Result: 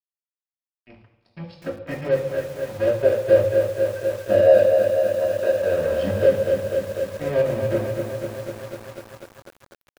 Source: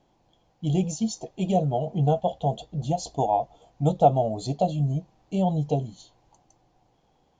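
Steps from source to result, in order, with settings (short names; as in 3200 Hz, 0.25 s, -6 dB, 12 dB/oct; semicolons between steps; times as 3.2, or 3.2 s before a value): HPF 48 Hz 24 dB/oct; low shelf 100 Hz -10.5 dB; compressor 3:1, threshold -27 dBFS, peak gain reduction 11.5 dB; small resonant body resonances 760/2600 Hz, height 14 dB, ringing for 25 ms; tremolo triangle 0.95 Hz, depth 90%; crossover distortion -36.5 dBFS; air absorption 64 m; outdoor echo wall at 52 m, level -24 dB; reverb RT60 0.65 s, pre-delay 3 ms, DRR 1 dB; speed mistake 45 rpm record played at 33 rpm; lo-fi delay 0.247 s, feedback 80%, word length 7-bit, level -5.5 dB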